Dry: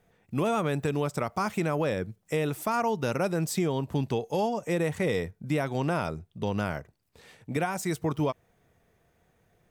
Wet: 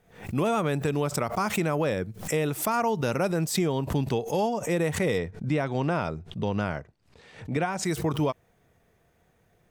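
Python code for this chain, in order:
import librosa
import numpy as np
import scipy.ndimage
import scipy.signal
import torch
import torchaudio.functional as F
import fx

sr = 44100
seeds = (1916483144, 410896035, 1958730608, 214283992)

y = fx.air_absorb(x, sr, metres=73.0, at=(5.18, 7.85))
y = fx.pre_swell(y, sr, db_per_s=120.0)
y = y * 10.0 ** (1.5 / 20.0)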